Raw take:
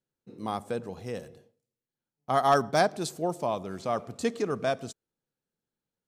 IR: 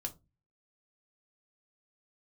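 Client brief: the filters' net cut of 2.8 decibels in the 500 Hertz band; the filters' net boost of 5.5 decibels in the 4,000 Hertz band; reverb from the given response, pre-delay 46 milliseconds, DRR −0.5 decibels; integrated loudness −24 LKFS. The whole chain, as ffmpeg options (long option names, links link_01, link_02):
-filter_complex "[0:a]equalizer=frequency=500:width_type=o:gain=-4,equalizer=frequency=4000:width_type=o:gain=7,asplit=2[link_01][link_02];[1:a]atrim=start_sample=2205,adelay=46[link_03];[link_02][link_03]afir=irnorm=-1:irlink=0,volume=1.5dB[link_04];[link_01][link_04]amix=inputs=2:normalize=0,volume=3dB"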